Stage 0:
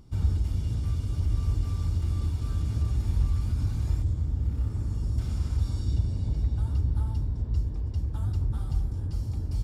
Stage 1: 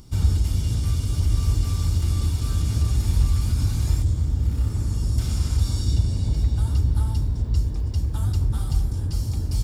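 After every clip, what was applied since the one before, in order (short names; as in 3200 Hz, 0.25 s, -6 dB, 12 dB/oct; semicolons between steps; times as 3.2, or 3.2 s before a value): high shelf 3100 Hz +11.5 dB; gain +5.5 dB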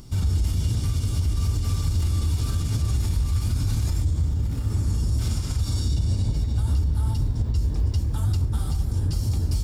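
limiter -19 dBFS, peak gain reduction 10.5 dB; flange 1.1 Hz, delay 6.8 ms, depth 7.1 ms, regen -55%; gain +7 dB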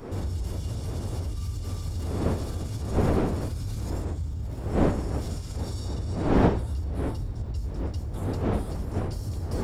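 wind noise 400 Hz -22 dBFS; gain -8.5 dB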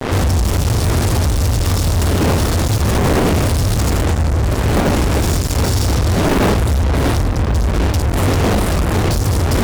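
fuzz box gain 37 dB, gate -39 dBFS; added harmonics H 7 -18 dB, 8 -15 dB, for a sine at -9.5 dBFS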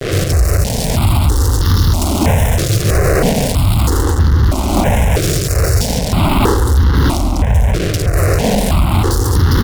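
echo 0.137 s -12 dB; step phaser 3.1 Hz 240–2400 Hz; gain +4.5 dB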